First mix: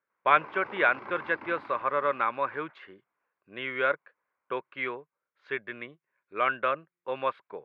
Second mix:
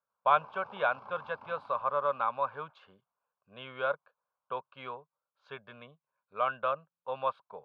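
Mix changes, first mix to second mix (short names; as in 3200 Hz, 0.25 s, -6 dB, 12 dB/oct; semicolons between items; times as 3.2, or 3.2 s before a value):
background -3.5 dB; master: add fixed phaser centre 810 Hz, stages 4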